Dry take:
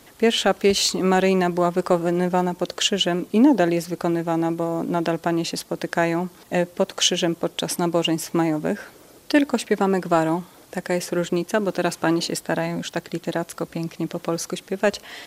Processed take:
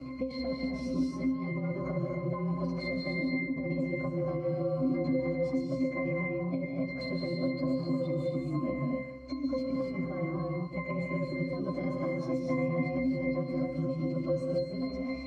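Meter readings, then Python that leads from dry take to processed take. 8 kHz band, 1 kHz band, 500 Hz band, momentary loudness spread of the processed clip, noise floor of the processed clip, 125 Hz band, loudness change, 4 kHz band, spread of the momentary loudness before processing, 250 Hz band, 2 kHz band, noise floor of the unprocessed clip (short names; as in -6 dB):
under -30 dB, -17.5 dB, -10.5 dB, 4 LU, -39 dBFS, -5.0 dB, -10.5 dB, -23.0 dB, 9 LU, -8.5 dB, -11.0 dB, -50 dBFS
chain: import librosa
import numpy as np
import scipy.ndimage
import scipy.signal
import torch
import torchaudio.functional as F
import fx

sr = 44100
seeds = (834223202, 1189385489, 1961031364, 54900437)

y = fx.partial_stretch(x, sr, pct=110)
y = scipy.signal.sosfilt(scipy.signal.butter(2, 9700.0, 'lowpass', fs=sr, output='sos'), y)
y = fx.peak_eq(y, sr, hz=220.0, db=5.0, octaves=0.89)
y = fx.over_compress(y, sr, threshold_db=-23.0, ratio=-0.5)
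y = fx.octave_resonator(y, sr, note='C', decay_s=0.4)
y = fx.vibrato(y, sr, rate_hz=1.1, depth_cents=7.7)
y = y + 10.0 ** (-15.0 / 20.0) * np.pad(y, (int(144 * sr / 1000.0), 0))[:len(y)]
y = fx.rev_gated(y, sr, seeds[0], gate_ms=300, shape='rising', drr_db=0.0)
y = fx.band_squash(y, sr, depth_pct=70)
y = y * librosa.db_to_amplitude(8.0)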